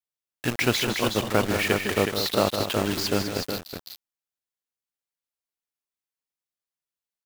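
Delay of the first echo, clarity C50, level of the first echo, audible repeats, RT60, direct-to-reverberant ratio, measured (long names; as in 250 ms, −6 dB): 157 ms, no reverb audible, −9.0 dB, 3, no reverb audible, no reverb audible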